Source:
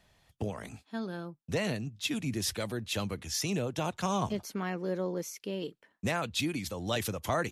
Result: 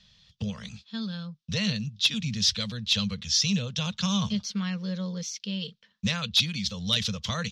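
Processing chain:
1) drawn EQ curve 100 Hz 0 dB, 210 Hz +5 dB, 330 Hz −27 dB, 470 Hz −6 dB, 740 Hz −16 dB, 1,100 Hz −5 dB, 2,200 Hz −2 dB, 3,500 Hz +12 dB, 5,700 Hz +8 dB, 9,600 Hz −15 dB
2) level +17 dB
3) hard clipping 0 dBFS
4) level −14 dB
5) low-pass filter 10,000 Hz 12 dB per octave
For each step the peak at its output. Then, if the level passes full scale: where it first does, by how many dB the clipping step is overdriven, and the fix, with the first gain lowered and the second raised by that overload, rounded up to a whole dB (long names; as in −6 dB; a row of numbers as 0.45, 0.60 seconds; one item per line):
−10.0, +7.0, 0.0, −14.0, −13.0 dBFS
step 2, 7.0 dB
step 2 +10 dB, step 4 −7 dB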